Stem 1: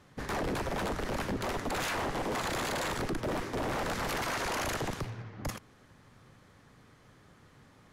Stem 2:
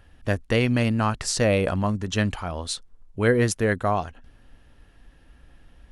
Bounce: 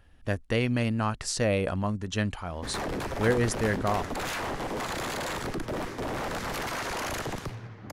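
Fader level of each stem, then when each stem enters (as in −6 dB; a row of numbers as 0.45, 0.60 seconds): +0.5, −5.0 decibels; 2.45, 0.00 seconds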